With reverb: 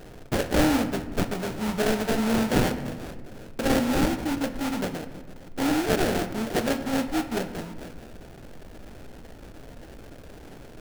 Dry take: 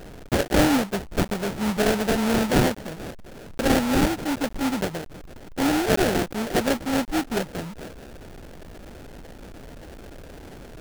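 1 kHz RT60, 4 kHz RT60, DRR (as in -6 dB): 1.2 s, 0.75 s, 8.5 dB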